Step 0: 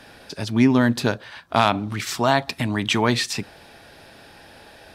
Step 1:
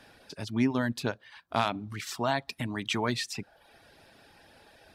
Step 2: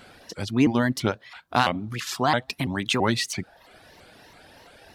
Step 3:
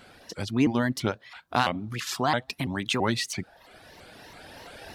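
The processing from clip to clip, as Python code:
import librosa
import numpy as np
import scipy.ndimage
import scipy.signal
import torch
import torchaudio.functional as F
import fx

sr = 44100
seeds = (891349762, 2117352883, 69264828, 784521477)

y1 = fx.dereverb_blind(x, sr, rt60_s=0.64)
y1 = y1 * 10.0 ** (-9.0 / 20.0)
y2 = fx.vibrato_shape(y1, sr, shape='saw_up', rate_hz=3.0, depth_cents=250.0)
y2 = y2 * 10.0 ** (6.5 / 20.0)
y3 = fx.recorder_agc(y2, sr, target_db=-15.5, rise_db_per_s=5.8, max_gain_db=30)
y3 = y3 * 10.0 ** (-3.0 / 20.0)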